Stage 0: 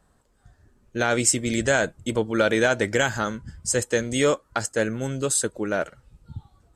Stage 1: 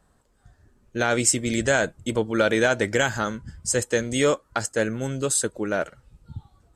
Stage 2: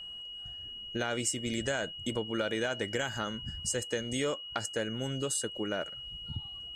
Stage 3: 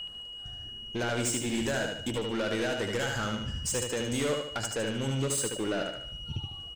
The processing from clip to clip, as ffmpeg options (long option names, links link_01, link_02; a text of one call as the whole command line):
ffmpeg -i in.wav -af anull out.wav
ffmpeg -i in.wav -af "acompressor=threshold=-35dB:ratio=2.5,aeval=exprs='val(0)+0.00891*sin(2*PI*2900*n/s)':channel_layout=same" out.wav
ffmpeg -i in.wav -filter_complex "[0:a]asoftclip=type=tanh:threshold=-32dB,asplit=2[link_01][link_02];[link_02]aecho=0:1:75|150|225|300|375:0.596|0.256|0.11|0.0474|0.0204[link_03];[link_01][link_03]amix=inputs=2:normalize=0,volume=5.5dB" out.wav